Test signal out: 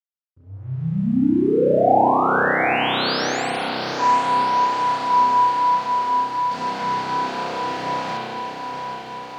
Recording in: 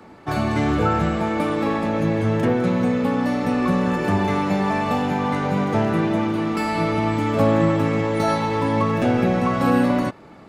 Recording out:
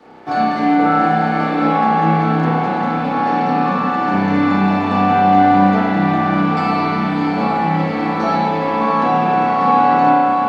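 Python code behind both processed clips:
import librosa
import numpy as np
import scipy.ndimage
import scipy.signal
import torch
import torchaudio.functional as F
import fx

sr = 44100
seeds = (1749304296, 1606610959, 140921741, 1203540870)

y = fx.rider(x, sr, range_db=3, speed_s=0.5)
y = fx.cabinet(y, sr, low_hz=140.0, low_slope=24, high_hz=6500.0, hz=(270.0, 480.0, 750.0, 1500.0, 4500.0), db=(6, 5, 9, 4, 7))
y = fx.echo_diffused(y, sr, ms=758, feedback_pct=70, wet_db=-7.0)
y = np.sign(y) * np.maximum(np.abs(y) - 10.0 ** (-48.0 / 20.0), 0.0)
y = fx.rev_spring(y, sr, rt60_s=2.0, pass_ms=(31,), chirp_ms=45, drr_db=-8.0)
y = y * librosa.db_to_amplitude(-6.0)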